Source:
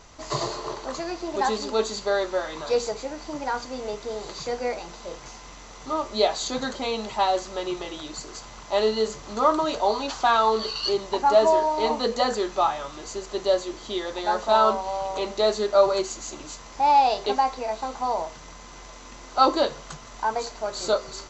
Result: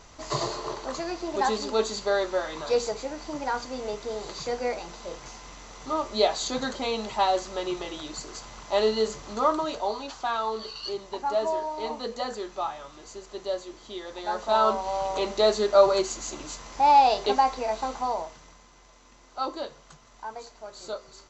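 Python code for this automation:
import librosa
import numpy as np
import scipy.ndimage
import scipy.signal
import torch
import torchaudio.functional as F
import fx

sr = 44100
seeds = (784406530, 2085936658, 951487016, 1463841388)

y = fx.gain(x, sr, db=fx.line((9.2, -1.0), (10.17, -8.5), (13.98, -8.5), (15.0, 0.5), (17.9, 0.5), (18.73, -12.0)))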